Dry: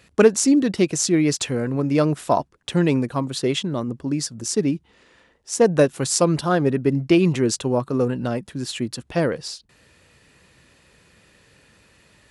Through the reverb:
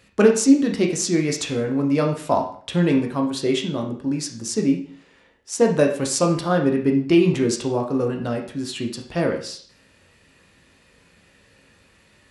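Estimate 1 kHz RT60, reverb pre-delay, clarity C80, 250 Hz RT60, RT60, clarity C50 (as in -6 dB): 0.50 s, 11 ms, 11.5 dB, 0.55 s, 0.50 s, 8.0 dB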